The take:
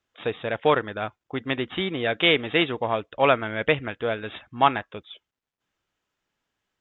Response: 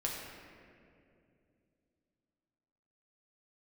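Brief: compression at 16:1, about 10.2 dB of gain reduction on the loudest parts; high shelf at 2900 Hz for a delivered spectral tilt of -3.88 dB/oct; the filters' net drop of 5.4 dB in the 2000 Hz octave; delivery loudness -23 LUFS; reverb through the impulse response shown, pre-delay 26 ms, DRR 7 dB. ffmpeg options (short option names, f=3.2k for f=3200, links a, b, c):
-filter_complex "[0:a]equalizer=f=2k:t=o:g=-5.5,highshelf=f=2.9k:g=-3,acompressor=threshold=-24dB:ratio=16,asplit=2[a][b];[1:a]atrim=start_sample=2205,adelay=26[c];[b][c]afir=irnorm=-1:irlink=0,volume=-10.5dB[d];[a][d]amix=inputs=2:normalize=0,volume=8dB"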